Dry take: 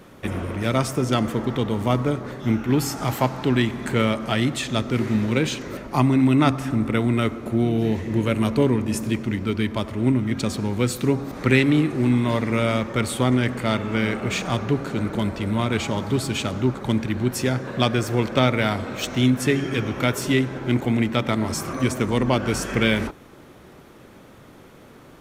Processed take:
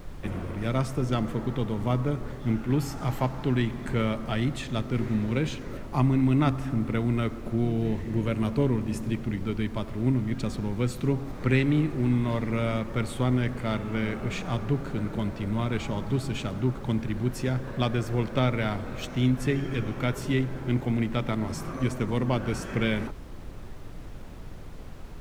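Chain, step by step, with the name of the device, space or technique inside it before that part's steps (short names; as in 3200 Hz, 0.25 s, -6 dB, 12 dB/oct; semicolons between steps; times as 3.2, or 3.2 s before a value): car interior (bell 140 Hz +5 dB 0.8 oct; high shelf 3800 Hz -6.5 dB; brown noise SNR 11 dB); gain -7 dB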